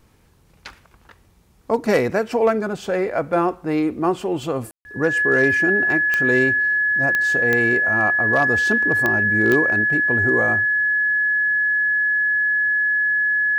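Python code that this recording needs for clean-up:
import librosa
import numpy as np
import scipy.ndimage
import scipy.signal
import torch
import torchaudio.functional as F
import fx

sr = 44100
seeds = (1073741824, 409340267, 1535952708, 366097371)

y = fx.fix_declip(x, sr, threshold_db=-8.5)
y = fx.fix_declick_ar(y, sr, threshold=10.0)
y = fx.notch(y, sr, hz=1700.0, q=30.0)
y = fx.fix_ambience(y, sr, seeds[0], print_start_s=0.03, print_end_s=0.53, start_s=4.71, end_s=4.85)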